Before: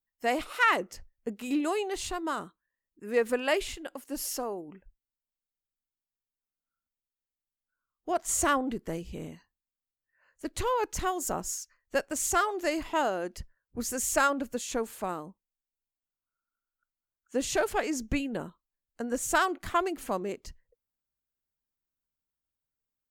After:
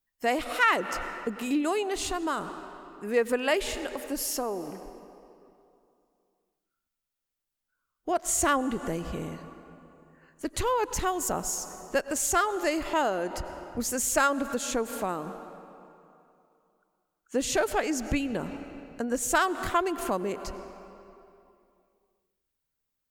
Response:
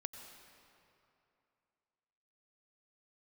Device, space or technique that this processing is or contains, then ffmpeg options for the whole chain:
ducked reverb: -filter_complex "[0:a]asplit=3[s0][s1][s2];[1:a]atrim=start_sample=2205[s3];[s1][s3]afir=irnorm=-1:irlink=0[s4];[s2]apad=whole_len=1019111[s5];[s4][s5]sidechaincompress=threshold=0.0112:ratio=10:attack=32:release=127,volume=1.41[s6];[s0][s6]amix=inputs=2:normalize=0"

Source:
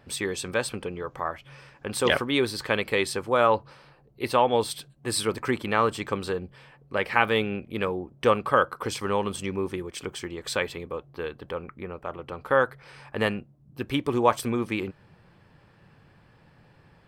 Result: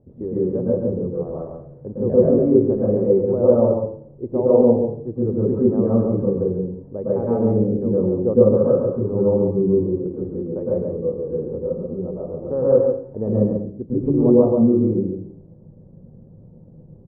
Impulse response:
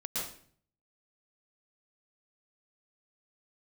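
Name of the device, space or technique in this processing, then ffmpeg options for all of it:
next room: -filter_complex "[0:a]asettb=1/sr,asplit=3[s0][s1][s2];[s0]atrim=end=11.814[s3];[s1]atrim=start=11.81:end=12.24,asetpts=PTS-STARTPTS,afade=t=in:d=0.004:c=qsin,afade=t=out:st=0.426:d=0.004:c=qsin,lowpass=f=1600:w=0.5412,lowpass=f=1600:w=1.3066[s4];[s2]atrim=start=12.236[s5];[s3][s4]acrossfade=d=0.004:c1=hsin:c2=qsin[s6];[s6][s5]acrossfade=d=0.004:c1=qsin:c2=hsin,lowpass=f=510:w=0.5412,lowpass=f=510:w=1.3066,aecho=1:1:138:0.531[s7];[1:a]atrim=start_sample=2205[s8];[s7][s8]afir=irnorm=-1:irlink=0,volume=2.11"

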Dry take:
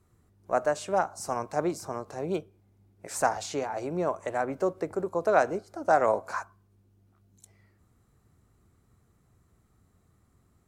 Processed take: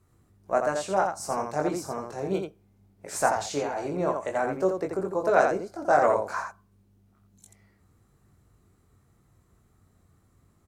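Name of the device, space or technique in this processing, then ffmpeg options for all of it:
slapback doubling: -filter_complex "[0:a]asplit=3[s0][s1][s2];[s1]adelay=21,volume=0.631[s3];[s2]adelay=85,volume=0.562[s4];[s0][s3][s4]amix=inputs=3:normalize=0"

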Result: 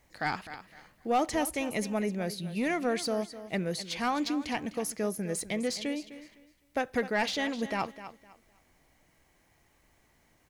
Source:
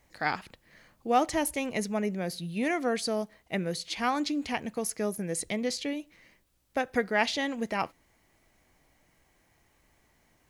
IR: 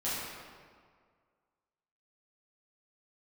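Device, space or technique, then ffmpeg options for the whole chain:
saturation between pre-emphasis and de-emphasis: -af "highshelf=f=2100:g=10.5,aecho=1:1:255|510|765:0.188|0.0452|0.0108,asoftclip=type=tanh:threshold=0.133,highshelf=f=2100:g=-10.5"

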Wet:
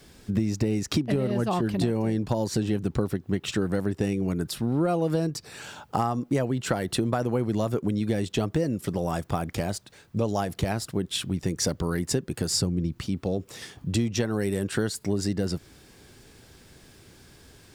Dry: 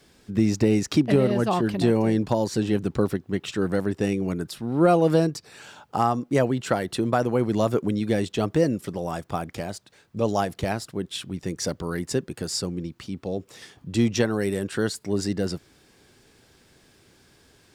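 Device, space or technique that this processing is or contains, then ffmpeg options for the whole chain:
ASMR close-microphone chain: -filter_complex "[0:a]asettb=1/sr,asplit=3[s0][s1][s2];[s0]atrim=end=12.504[s3];[s1]atrim=start=12.5:end=13.01,asetpts=PTS-STARTPTS,afade=t=in:d=0.004:c=qsin,afade=t=out:st=0.506:d=0.004:c=qsin,lowshelf=f=230:g=8[s4];[s2]atrim=start=13.006[s5];[s3][s4]acrossfade=d=0.004:c1=hsin:c2=qsin[s6];[s6][s5]acrossfade=d=0.004:c1=qsin:c2=hsin,lowshelf=f=140:g=7.5,acompressor=threshold=0.0562:ratio=6,highshelf=f=9800:g=5.5,volume=1.41"

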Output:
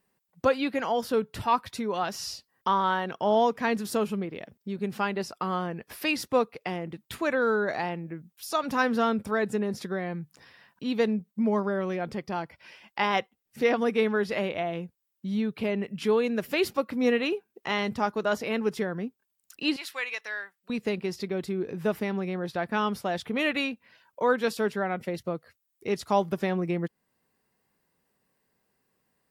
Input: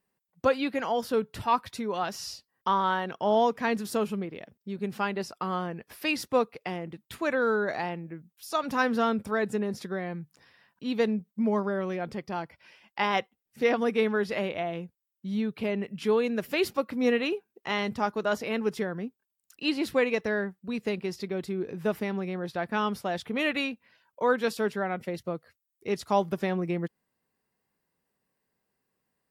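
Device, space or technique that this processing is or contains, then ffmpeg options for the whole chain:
parallel compression: -filter_complex "[0:a]asplit=2[s0][s1];[s1]acompressor=threshold=0.00631:ratio=6,volume=0.891[s2];[s0][s2]amix=inputs=2:normalize=0,asettb=1/sr,asplit=3[s3][s4][s5];[s3]atrim=end=19.764[s6];[s4]atrim=start=19.76:end=20.7,asetpts=PTS-STARTPTS,afade=t=in:d=0.004:c=qsin,afade=t=out:st=0.936:d=0.004:c=qsin,highpass=1400[s7];[s5]atrim=start=20.696[s8];[s6][s7]acrossfade=d=0.004:c1=hsin:c2=qsin[s9];[s9][s8]acrossfade=d=0.004:c1=qsin:c2=hsin"

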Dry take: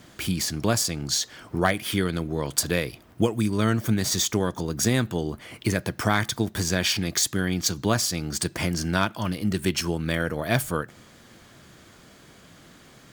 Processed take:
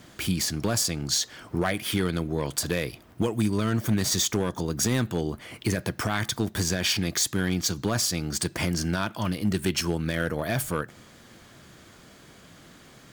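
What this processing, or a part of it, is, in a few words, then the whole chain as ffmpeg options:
limiter into clipper: -af "alimiter=limit=0.237:level=0:latency=1:release=44,asoftclip=type=hard:threshold=0.15"

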